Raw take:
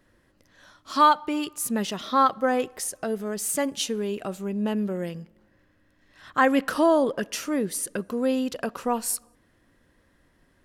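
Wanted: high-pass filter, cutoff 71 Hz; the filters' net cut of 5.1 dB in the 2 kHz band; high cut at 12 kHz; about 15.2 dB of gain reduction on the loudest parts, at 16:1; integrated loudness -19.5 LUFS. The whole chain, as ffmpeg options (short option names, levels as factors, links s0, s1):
-af "highpass=71,lowpass=12000,equalizer=f=2000:t=o:g=-7,acompressor=threshold=0.0316:ratio=16,volume=5.96"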